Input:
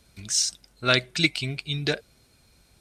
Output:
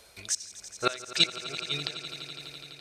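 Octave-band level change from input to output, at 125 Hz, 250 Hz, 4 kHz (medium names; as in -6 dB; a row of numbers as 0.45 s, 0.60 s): -13.5 dB, -10.5 dB, -2.0 dB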